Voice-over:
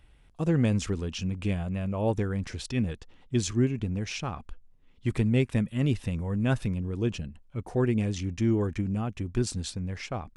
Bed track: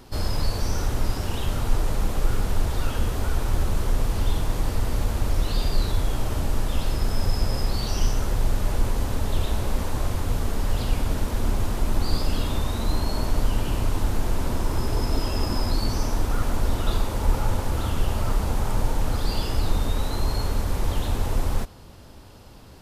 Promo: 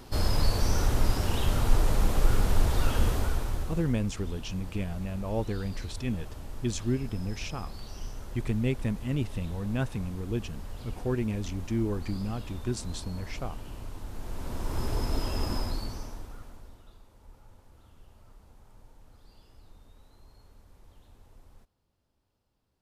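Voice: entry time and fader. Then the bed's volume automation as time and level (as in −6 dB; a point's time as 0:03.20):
3.30 s, −4.0 dB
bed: 0:03.10 −0.5 dB
0:04.03 −16.5 dB
0:14.06 −16.5 dB
0:14.83 −5.5 dB
0:15.55 −5.5 dB
0:16.94 −31.5 dB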